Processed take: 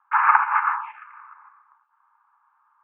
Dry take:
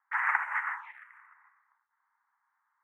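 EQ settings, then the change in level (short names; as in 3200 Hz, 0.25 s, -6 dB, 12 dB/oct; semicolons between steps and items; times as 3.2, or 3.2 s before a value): air absorption 160 m; speaker cabinet 450–3100 Hz, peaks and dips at 570 Hz +10 dB, 860 Hz +8 dB, 1200 Hz +8 dB, 1800 Hz +8 dB, 2600 Hz +7 dB; fixed phaser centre 1900 Hz, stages 6; +8.5 dB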